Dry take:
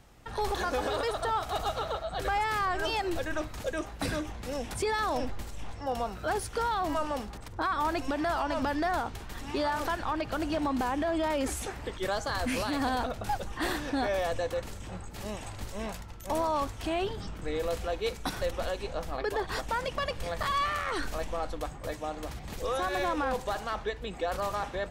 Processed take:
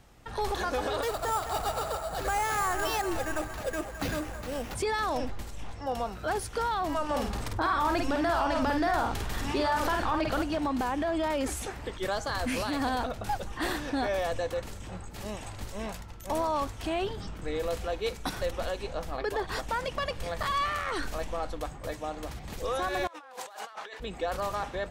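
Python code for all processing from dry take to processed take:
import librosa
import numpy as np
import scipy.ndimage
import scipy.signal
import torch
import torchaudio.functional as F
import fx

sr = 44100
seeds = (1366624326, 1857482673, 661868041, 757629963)

y = fx.chain(x, sr, fx.notch(hz=3300.0, q=17.0),
    fx.echo_wet_bandpass(ms=214, feedback_pct=64, hz=1100.0, wet_db=-9),
    fx.sample_hold(seeds[0], rate_hz=8500.0, jitter_pct=0), at=(1.02, 4.75))
y = fx.chain(y, sr, fx.doubler(ms=50.0, db=-5.0),
    fx.env_flatten(amount_pct=50), at=(7.09, 10.42))
y = fx.chain(y, sr, fx.highpass(hz=660.0, slope=12),
    fx.over_compress(threshold_db=-45.0, ratio=-1.0), at=(23.07, 24.0))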